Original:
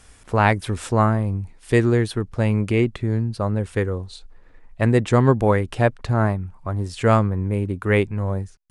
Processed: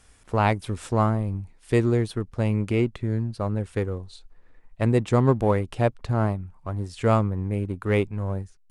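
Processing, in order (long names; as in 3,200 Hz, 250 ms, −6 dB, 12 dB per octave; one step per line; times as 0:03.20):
dynamic equaliser 1,700 Hz, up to −7 dB, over −40 dBFS, Q 3.2
in parallel at −6.5 dB: slack as between gear wheels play −19.5 dBFS
on the sum: level −6.5 dB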